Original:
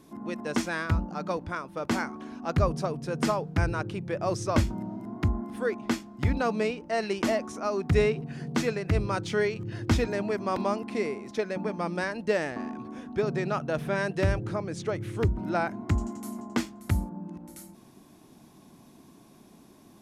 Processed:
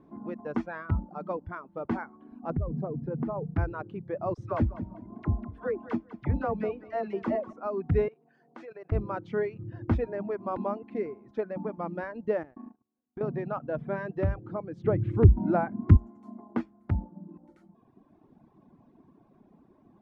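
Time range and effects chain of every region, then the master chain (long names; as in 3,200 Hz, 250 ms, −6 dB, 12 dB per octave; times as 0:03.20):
0:02.50–0:03.55: low-pass filter 1,000 Hz 6 dB per octave + low-shelf EQ 340 Hz +9.5 dB + downward compressor, threshold −24 dBFS
0:04.34–0:07.53: all-pass dispersion lows, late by 42 ms, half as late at 910 Hz + repeating echo 197 ms, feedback 36%, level −10 dB
0:08.08–0:08.92: high-pass filter 420 Hz + high-shelf EQ 5,500 Hz +8.5 dB + output level in coarse steps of 13 dB
0:12.43–0:13.21: noise gate −35 dBFS, range −33 dB + downward compressor 10 to 1, threshold −34 dBFS
0:14.84–0:15.97: low-shelf EQ 450 Hz +11.5 dB + one half of a high-frequency compander encoder only
whole clip: reverb reduction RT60 1.2 s; low-pass filter 1,200 Hz 12 dB per octave; level −1.5 dB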